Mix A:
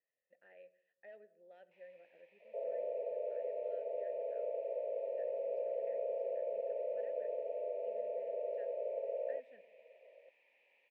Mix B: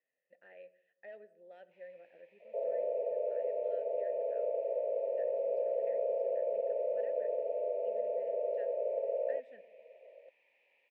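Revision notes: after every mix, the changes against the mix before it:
speech +5.0 dB
second sound +5.0 dB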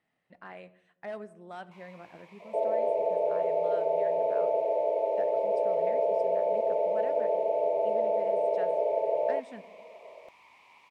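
master: remove formant filter e

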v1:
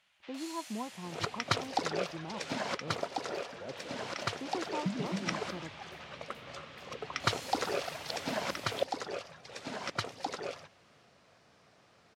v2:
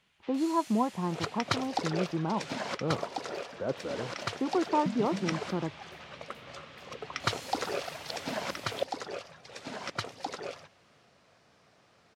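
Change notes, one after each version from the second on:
speech +11.5 dB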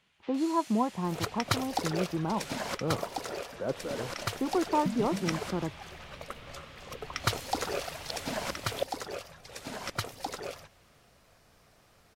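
second sound: remove band-pass filter 130–5,900 Hz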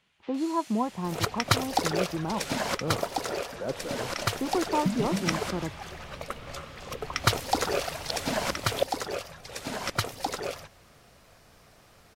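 second sound +5.5 dB

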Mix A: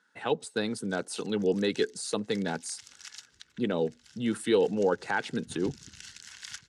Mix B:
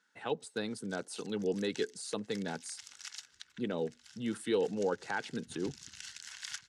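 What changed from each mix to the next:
speech −6.5 dB
second sound −9.0 dB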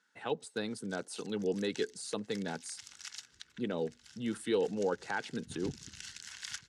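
second sound +8.0 dB

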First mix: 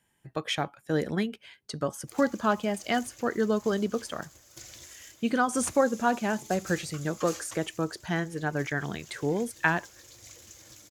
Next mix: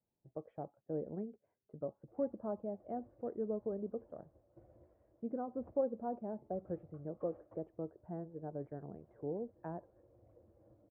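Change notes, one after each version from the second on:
speech −6.5 dB
master: add transistor ladder low-pass 730 Hz, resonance 40%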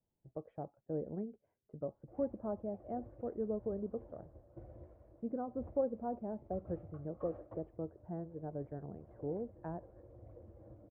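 background +7.5 dB
master: add low-shelf EQ 82 Hz +10.5 dB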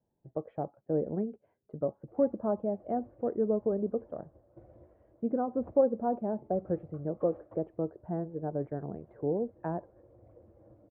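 speech +9.5 dB
master: add low-shelf EQ 82 Hz −10.5 dB

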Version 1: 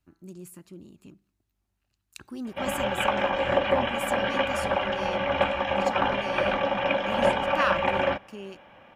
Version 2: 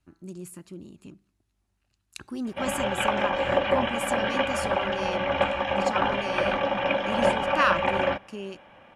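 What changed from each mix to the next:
speech +3.5 dB
master: add Butterworth low-pass 12,000 Hz 72 dB per octave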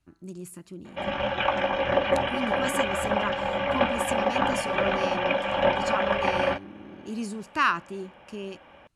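background: entry −1.60 s

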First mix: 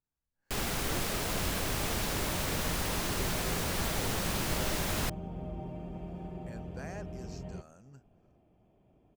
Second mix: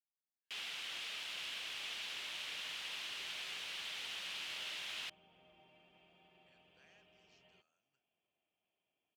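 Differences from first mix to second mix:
speech −9.0 dB
master: add resonant band-pass 3,000 Hz, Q 2.8

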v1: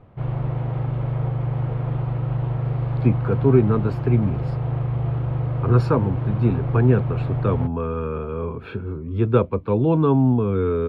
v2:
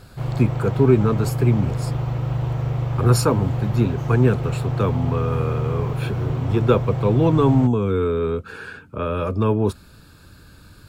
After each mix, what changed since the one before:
speech: entry −2.65 s
master: remove high-frequency loss of the air 370 metres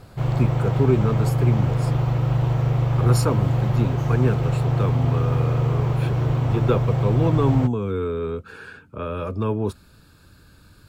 speech −4.5 dB
background +3.0 dB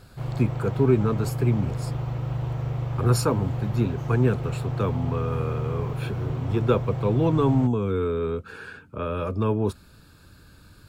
background −8.0 dB

